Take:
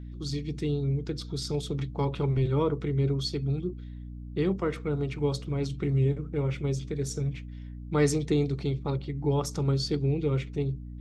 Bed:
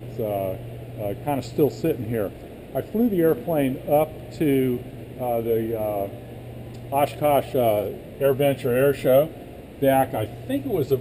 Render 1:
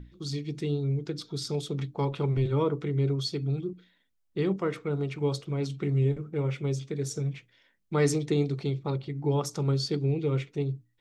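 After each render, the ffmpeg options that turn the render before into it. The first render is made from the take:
-af "bandreject=f=60:t=h:w=6,bandreject=f=120:t=h:w=6,bandreject=f=180:t=h:w=6,bandreject=f=240:t=h:w=6,bandreject=f=300:t=h:w=6"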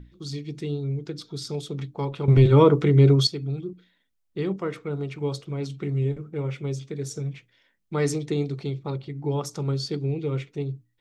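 -filter_complex "[0:a]asplit=3[a][b][c];[a]atrim=end=2.282[d];[b]atrim=start=2.278:end=3.272,asetpts=PTS-STARTPTS,volume=11dB[e];[c]atrim=start=3.268[f];[d][e]acrossfade=d=0.004:c1=hsin:c2=hsin[g];[g][f]acrossfade=d=0.004:c1=hsin:c2=hsin"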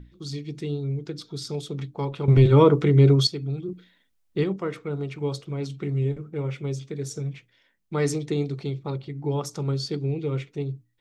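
-filter_complex "[0:a]asplit=3[a][b][c];[a]atrim=end=3.682[d];[b]atrim=start=3.678:end=4.442,asetpts=PTS-STARTPTS,volume=5dB[e];[c]atrim=start=4.438[f];[d][e]acrossfade=d=0.004:c1=hsin:c2=hsin[g];[g][f]acrossfade=d=0.004:c1=hsin:c2=hsin"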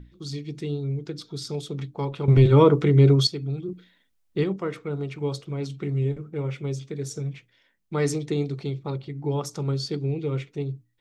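-af anull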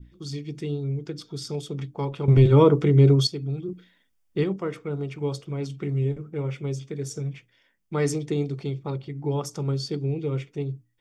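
-af "bandreject=f=4k:w=7.3,adynamicequalizer=threshold=0.00708:dfrequency=1700:dqfactor=0.85:tfrequency=1700:tqfactor=0.85:attack=5:release=100:ratio=0.375:range=2:mode=cutabove:tftype=bell"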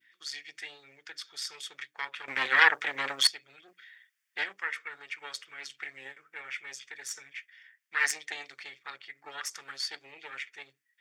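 -af "aeval=exprs='0.531*(cos(1*acos(clip(val(0)/0.531,-1,1)))-cos(1*PI/2))+0.211*(cos(4*acos(clip(val(0)/0.531,-1,1)))-cos(4*PI/2))':c=same,highpass=f=1.8k:t=q:w=4.4"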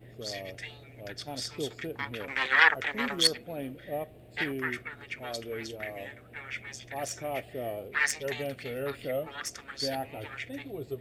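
-filter_complex "[1:a]volume=-15.5dB[a];[0:a][a]amix=inputs=2:normalize=0"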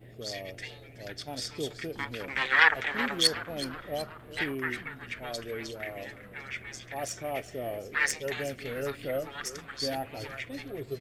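-filter_complex "[0:a]asplit=7[a][b][c][d][e][f][g];[b]adelay=373,afreqshift=-130,volume=-15dB[h];[c]adelay=746,afreqshift=-260,volume=-19.7dB[i];[d]adelay=1119,afreqshift=-390,volume=-24.5dB[j];[e]adelay=1492,afreqshift=-520,volume=-29.2dB[k];[f]adelay=1865,afreqshift=-650,volume=-33.9dB[l];[g]adelay=2238,afreqshift=-780,volume=-38.7dB[m];[a][h][i][j][k][l][m]amix=inputs=7:normalize=0"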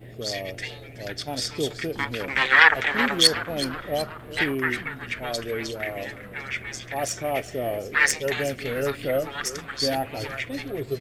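-af "volume=7.5dB,alimiter=limit=-2dB:level=0:latency=1"

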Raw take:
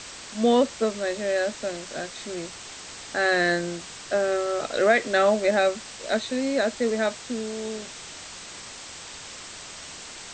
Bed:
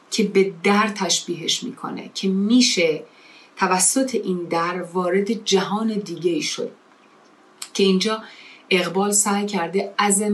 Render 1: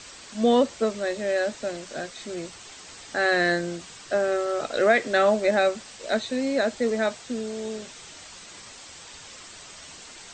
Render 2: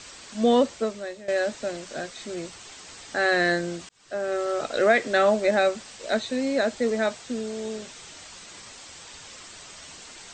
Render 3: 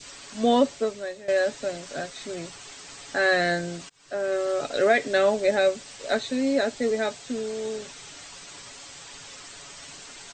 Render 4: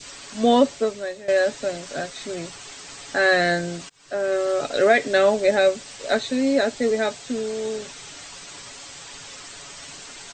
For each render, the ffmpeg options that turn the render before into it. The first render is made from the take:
-af "afftdn=nr=6:nf=-41"
-filter_complex "[0:a]asplit=3[a][b][c];[a]atrim=end=1.28,asetpts=PTS-STARTPTS,afade=t=out:st=0.66:d=0.62:silence=0.16788[d];[b]atrim=start=1.28:end=3.89,asetpts=PTS-STARTPTS,afade=t=in:d=0.004:c=hsin:silence=0.16788,afade=t=out:st=2.606:d=0.004:c=hsin[e];[c]atrim=start=3.89,asetpts=PTS-STARTPTS,afade=t=in:d=0.58[f];[d][e][f]concat=n=3:v=0:a=1"
-af "aecho=1:1:7.1:0.43,adynamicequalizer=threshold=0.0141:dfrequency=1200:dqfactor=1:tfrequency=1200:tqfactor=1:attack=5:release=100:ratio=0.375:range=2.5:mode=cutabove:tftype=bell"
-af "volume=3.5dB"

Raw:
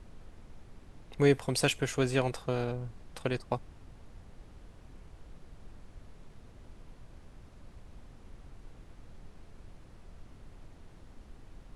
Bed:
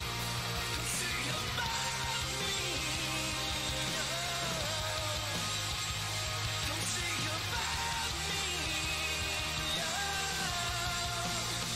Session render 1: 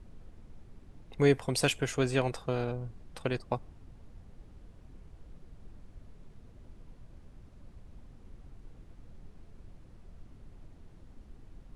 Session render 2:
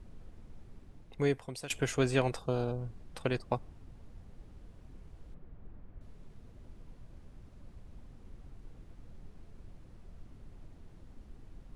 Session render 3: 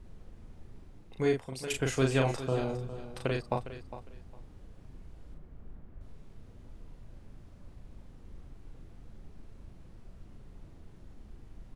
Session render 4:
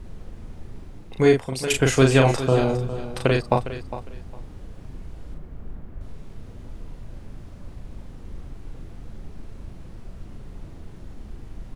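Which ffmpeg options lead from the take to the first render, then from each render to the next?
-af "afftdn=nr=6:nf=-54"
-filter_complex "[0:a]asettb=1/sr,asplit=3[a][b][c];[a]atrim=end=2.394[d];[b]atrim=start=2.39:end=2.79,asetpts=PTS-STARTPTS,afade=t=in:d=0.004:c=qsin,afade=t=out:st=0.396:d=0.004:c=qsin,equalizer=f=2k:t=o:w=0.61:g=-15[e];[c]atrim=start=2.786[f];[d][e]acrossfade=d=0.004:c1=hsin:c2=qsin[g];[g][f]acrossfade=d=0.004:c1=qsin:c2=hsin,asettb=1/sr,asplit=3[h][i][j];[h]atrim=end=5.344[k];[i]atrim=start=5.34:end=6.01,asetpts=PTS-STARTPTS,afade=t=in:d=0.004:c=qsin,afade=t=out:st=0.666:d=0.004:c=qsin,lowpass=2k[l];[j]atrim=start=6.006[m];[k][l]acrossfade=d=0.004:c1=hsin:c2=qsin[n];[n][m]acrossfade=d=0.004:c1=qsin:c2=hsin,asplit=2[o][p];[o]atrim=end=1.7,asetpts=PTS-STARTPTS,afade=t=out:st=0.76:d=0.94:silence=0.112202[q];[p]atrim=start=1.7,asetpts=PTS-STARTPTS,afade=t=in:d=0.004:c=hsin:silence=0.112202[r];[q][r]concat=n=2:v=0:a=1"
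-filter_complex "[0:a]asplit=2[a][b];[b]adelay=38,volume=-4dB[c];[a][c]amix=inputs=2:normalize=0,aecho=1:1:407|814:0.224|0.0448"
-af "volume=11.5dB,alimiter=limit=-3dB:level=0:latency=1"

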